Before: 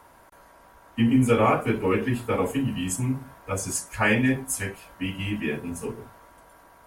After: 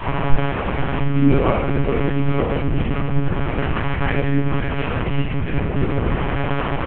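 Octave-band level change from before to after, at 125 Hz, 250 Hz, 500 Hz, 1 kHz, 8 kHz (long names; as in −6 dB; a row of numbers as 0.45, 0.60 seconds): +9.5 dB, +4.0 dB, +4.5 dB, +5.0 dB, below −40 dB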